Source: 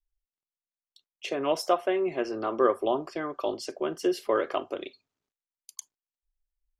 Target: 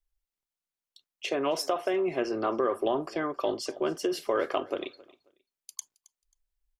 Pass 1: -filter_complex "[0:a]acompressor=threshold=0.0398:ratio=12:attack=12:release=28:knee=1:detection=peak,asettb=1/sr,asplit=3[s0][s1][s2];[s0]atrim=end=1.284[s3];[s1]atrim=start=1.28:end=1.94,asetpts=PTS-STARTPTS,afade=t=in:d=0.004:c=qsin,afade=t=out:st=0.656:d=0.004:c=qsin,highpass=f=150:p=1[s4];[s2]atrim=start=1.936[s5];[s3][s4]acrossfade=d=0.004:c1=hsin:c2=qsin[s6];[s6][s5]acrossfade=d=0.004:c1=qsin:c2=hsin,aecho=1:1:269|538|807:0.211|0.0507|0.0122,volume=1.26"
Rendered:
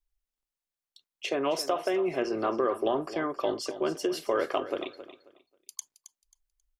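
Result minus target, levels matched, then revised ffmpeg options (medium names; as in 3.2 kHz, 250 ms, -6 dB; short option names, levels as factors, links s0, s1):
echo-to-direct +8.5 dB
-filter_complex "[0:a]acompressor=threshold=0.0398:ratio=12:attack=12:release=28:knee=1:detection=peak,asettb=1/sr,asplit=3[s0][s1][s2];[s0]atrim=end=1.284[s3];[s1]atrim=start=1.28:end=1.94,asetpts=PTS-STARTPTS,afade=t=in:d=0.004:c=qsin,afade=t=out:st=0.656:d=0.004:c=qsin,highpass=f=150:p=1[s4];[s2]atrim=start=1.936[s5];[s3][s4]acrossfade=d=0.004:c1=hsin:c2=qsin[s6];[s6][s5]acrossfade=d=0.004:c1=qsin:c2=hsin,aecho=1:1:269|538:0.0794|0.0191,volume=1.26"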